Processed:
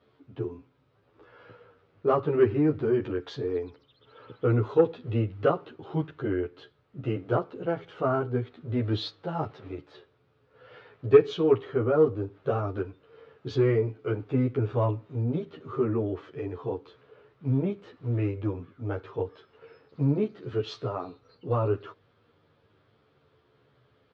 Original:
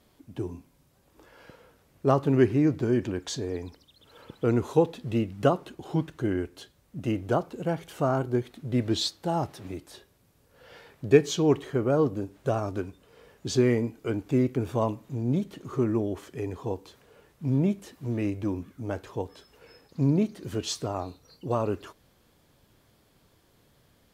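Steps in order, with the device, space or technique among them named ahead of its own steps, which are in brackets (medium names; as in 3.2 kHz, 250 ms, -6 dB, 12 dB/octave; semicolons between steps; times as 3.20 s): barber-pole flanger into a guitar amplifier (endless flanger 11.2 ms -0.3 Hz; saturation -13 dBFS, distortion -21 dB; cabinet simulation 93–3800 Hz, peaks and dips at 110 Hz +9 dB, 200 Hz -5 dB, 440 Hz +8 dB, 1.3 kHz +8 dB)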